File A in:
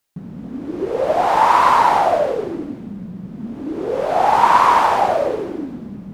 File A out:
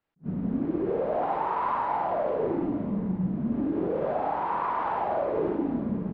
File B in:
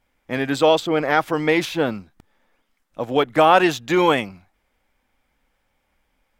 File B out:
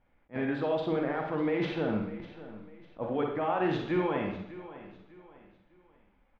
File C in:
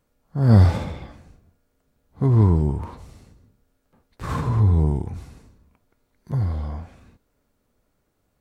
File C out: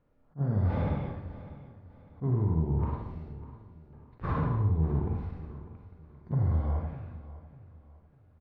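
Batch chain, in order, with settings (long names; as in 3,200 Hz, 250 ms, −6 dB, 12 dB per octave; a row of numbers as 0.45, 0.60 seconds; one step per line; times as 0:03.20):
high-frequency loss of the air 330 metres
reversed playback
downward compressor, threshold −23 dBFS
reversed playback
brickwall limiter −22 dBFS
high-shelf EQ 3,000 Hz −9 dB
on a send: repeating echo 600 ms, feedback 34%, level −16 dB
on the sum: four-comb reverb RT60 0.66 s, DRR 1.5 dB
level that may rise only so fast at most 430 dB per second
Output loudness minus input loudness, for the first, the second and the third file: −12.5, −12.5, −10.5 LU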